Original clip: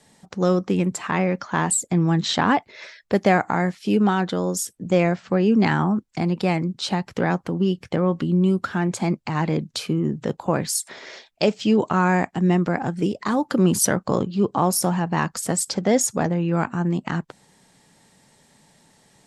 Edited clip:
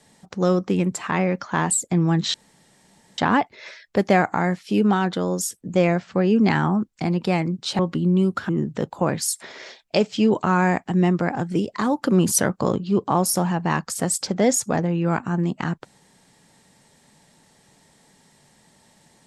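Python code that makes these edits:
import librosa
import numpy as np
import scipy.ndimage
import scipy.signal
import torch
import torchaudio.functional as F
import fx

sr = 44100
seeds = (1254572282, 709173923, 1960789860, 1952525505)

y = fx.edit(x, sr, fx.insert_room_tone(at_s=2.34, length_s=0.84),
    fx.cut(start_s=6.95, length_s=1.11),
    fx.cut(start_s=8.76, length_s=1.2), tone=tone)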